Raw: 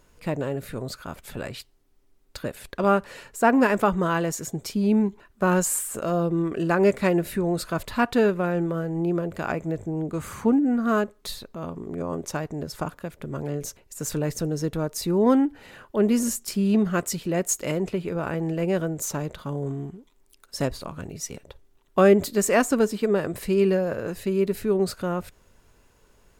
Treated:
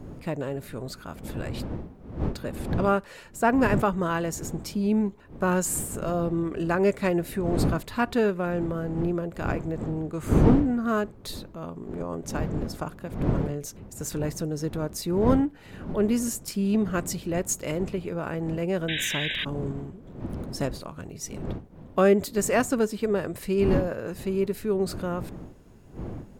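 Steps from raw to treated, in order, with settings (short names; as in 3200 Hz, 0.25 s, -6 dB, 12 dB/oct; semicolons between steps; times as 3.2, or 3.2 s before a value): wind noise 250 Hz -30 dBFS; painted sound noise, 18.88–19.45, 1500–3900 Hz -27 dBFS; gain -3 dB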